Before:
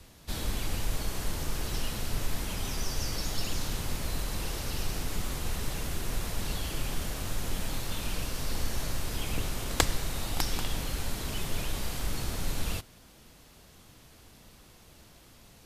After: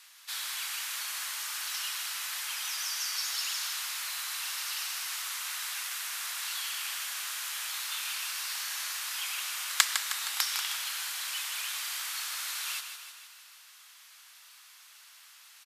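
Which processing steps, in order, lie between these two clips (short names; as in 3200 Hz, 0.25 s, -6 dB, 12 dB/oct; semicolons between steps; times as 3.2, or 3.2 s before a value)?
HPF 1200 Hz 24 dB/oct; feedback echo 0.156 s, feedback 59%, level -8 dB; gain +4 dB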